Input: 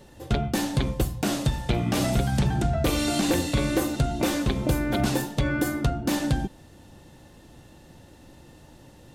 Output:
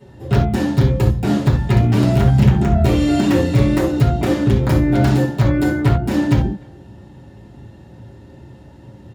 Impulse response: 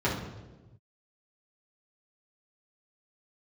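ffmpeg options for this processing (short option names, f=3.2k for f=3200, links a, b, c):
-filter_complex "[0:a]aeval=exprs='(mod(5.01*val(0)+1,2)-1)/5.01':c=same,asplit=2[a][b];[b]adelay=300,highpass=300,lowpass=3.4k,asoftclip=type=hard:threshold=-23.5dB,volume=-22dB[c];[a][c]amix=inputs=2:normalize=0[d];[1:a]atrim=start_sample=2205,atrim=end_sample=4410[e];[d][e]afir=irnorm=-1:irlink=0,volume=-7.5dB"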